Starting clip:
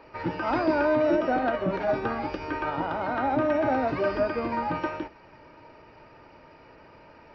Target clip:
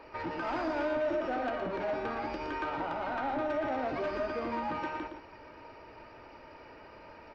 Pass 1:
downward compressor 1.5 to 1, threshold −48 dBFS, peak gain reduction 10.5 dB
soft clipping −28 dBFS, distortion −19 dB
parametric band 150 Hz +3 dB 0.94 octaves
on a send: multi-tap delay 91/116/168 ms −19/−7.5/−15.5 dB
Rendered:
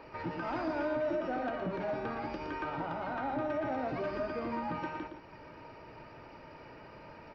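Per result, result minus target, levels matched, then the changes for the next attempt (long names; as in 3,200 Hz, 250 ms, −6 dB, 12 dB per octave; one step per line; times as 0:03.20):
125 Hz band +6.0 dB; downward compressor: peak gain reduction +4 dB
change: parametric band 150 Hz −7 dB 0.94 octaves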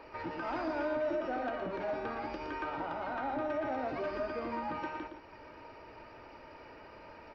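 downward compressor: peak gain reduction +4 dB
change: downward compressor 1.5 to 1, threshold −36.5 dBFS, peak gain reduction 6.5 dB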